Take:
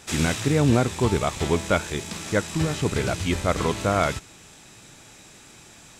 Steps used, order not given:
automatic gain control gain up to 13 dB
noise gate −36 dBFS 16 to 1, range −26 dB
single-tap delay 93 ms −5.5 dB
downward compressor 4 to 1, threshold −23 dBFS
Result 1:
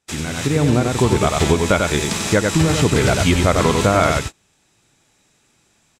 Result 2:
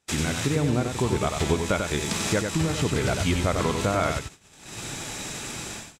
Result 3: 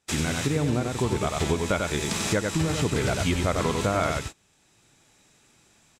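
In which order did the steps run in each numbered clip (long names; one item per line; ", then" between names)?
single-tap delay, then downward compressor, then noise gate, then automatic gain control
automatic gain control, then downward compressor, then noise gate, then single-tap delay
single-tap delay, then noise gate, then automatic gain control, then downward compressor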